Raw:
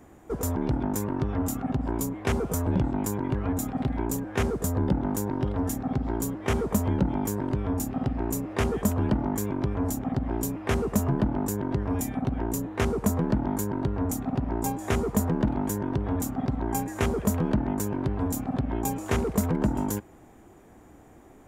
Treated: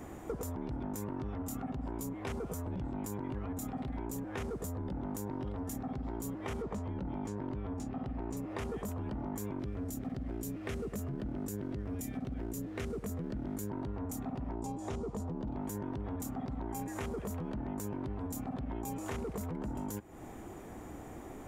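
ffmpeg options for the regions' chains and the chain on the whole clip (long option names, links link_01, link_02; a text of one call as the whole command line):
ffmpeg -i in.wav -filter_complex "[0:a]asettb=1/sr,asplit=3[link_01][link_02][link_03];[link_01]atrim=end=6.624[link_04];[link_02]atrim=start=6.62:end=8.37,asetpts=PTS-STARTPTS,afade=type=in:duration=0.004:curve=qsin,afade=type=out:start_time=1.746:duration=0.004:curve=qsin,lowpass=8800,adynamicsmooth=sensitivity=5.5:basefreq=5100[link_05];[link_03]atrim=start=8.366[link_06];[link_04][link_05]acrossfade=duration=0.004:curve1=hsin:curve2=qsin[link_07];[link_07][link_06]acrossfade=duration=0.004:curve1=qsin:curve2=hsin,asettb=1/sr,asplit=3[link_08][link_09][link_10];[link_08]atrim=end=9.594[link_11];[link_09]atrim=start=9.59:end=13.7,asetpts=PTS-STARTPTS,afade=type=in:duration=0.004:curve=qsin,afade=type=out:start_time=4.106:duration=0.004:curve=qsin,aeval=exprs='sgn(val(0))*max(abs(val(0))-0.00168,0)':channel_layout=same,equalizer=frequency=920:width=2.1:gain=-11[link_12];[link_10]atrim=start=13.696[link_13];[link_11][link_12]acrossfade=duration=0.004:curve1=hsin:curve2=qsin[link_14];[link_14][link_13]acrossfade=duration=0.004:curve1=qsin:curve2=hsin,asettb=1/sr,asplit=3[link_15][link_16][link_17];[link_15]atrim=end=14.554[link_18];[link_16]atrim=start=14.55:end=15.56,asetpts=PTS-STARTPTS,afade=type=in:duration=0.004:curve=qsin,afade=type=out:start_time=1.006:duration=0.004:curve=qsin,lowpass=6700,equalizer=frequency=1900:width_type=o:width=1.3:gain=-9[link_19];[link_17]atrim=start=15.556[link_20];[link_18][link_19]acrossfade=duration=0.004:curve1=hsin:curve2=qsin[link_21];[link_21][link_20]acrossfade=duration=0.004:curve1=qsin:curve2=hsin,bandreject=frequency=1600:width=26,alimiter=limit=-22.5dB:level=0:latency=1:release=12,acompressor=threshold=-42dB:ratio=6,volume=5.5dB" out.wav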